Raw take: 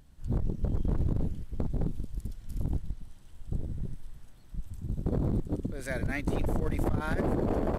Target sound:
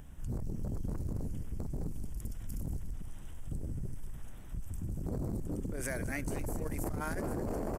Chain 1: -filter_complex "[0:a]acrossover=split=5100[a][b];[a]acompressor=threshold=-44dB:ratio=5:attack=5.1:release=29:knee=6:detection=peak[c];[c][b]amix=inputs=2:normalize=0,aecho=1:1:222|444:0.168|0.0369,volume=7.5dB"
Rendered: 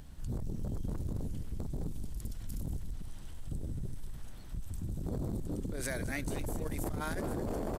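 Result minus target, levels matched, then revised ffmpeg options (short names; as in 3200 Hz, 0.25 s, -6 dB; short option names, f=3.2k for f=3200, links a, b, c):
4000 Hz band +6.0 dB
-filter_complex "[0:a]acrossover=split=5100[a][b];[a]acompressor=threshold=-44dB:ratio=5:attack=5.1:release=29:knee=6:detection=peak,lowpass=f=4k:w=0.5412,lowpass=f=4k:w=1.3066[c];[c][b]amix=inputs=2:normalize=0,aecho=1:1:222|444:0.168|0.0369,volume=7.5dB"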